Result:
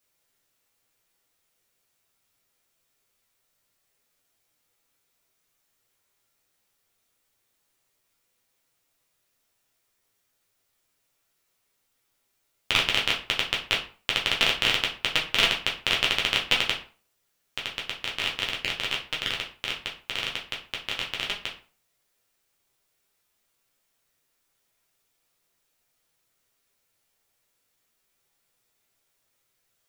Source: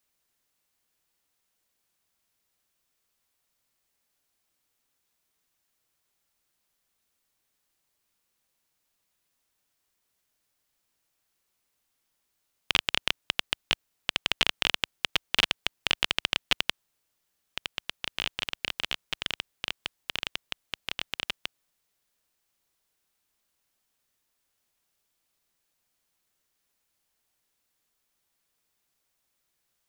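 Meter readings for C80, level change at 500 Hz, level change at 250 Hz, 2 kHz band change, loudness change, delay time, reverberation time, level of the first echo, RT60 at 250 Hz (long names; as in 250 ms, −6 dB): 14.5 dB, +6.0 dB, +3.5 dB, +4.5 dB, +4.0 dB, no echo audible, 0.40 s, no echo audible, 0.40 s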